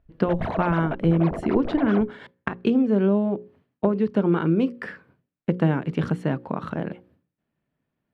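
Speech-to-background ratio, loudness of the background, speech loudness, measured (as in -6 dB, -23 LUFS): 9.0 dB, -33.0 LUFS, -24.0 LUFS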